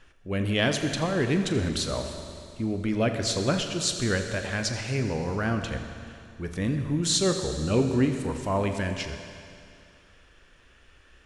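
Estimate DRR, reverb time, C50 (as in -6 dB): 5.5 dB, 2.4 s, 6.5 dB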